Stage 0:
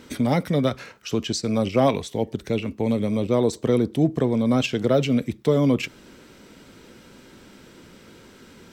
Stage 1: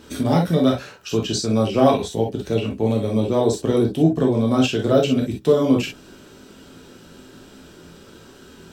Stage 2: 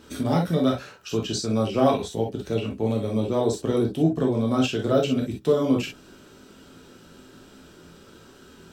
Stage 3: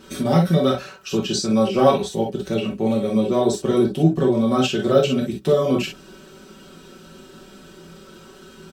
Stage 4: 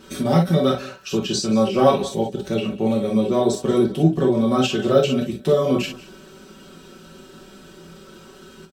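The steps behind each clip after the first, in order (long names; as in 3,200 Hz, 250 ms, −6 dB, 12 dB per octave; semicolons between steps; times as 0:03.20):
parametric band 2,100 Hz −12 dB 0.21 octaves; reverb whose tail is shaped and stops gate 80 ms flat, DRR −1 dB
parametric band 1,300 Hz +3 dB 0.28 octaves; level −4.5 dB
comb filter 5.3 ms, depth 85%; level +2.5 dB
single-tap delay 181 ms −19 dB; every ending faded ahead of time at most 270 dB per second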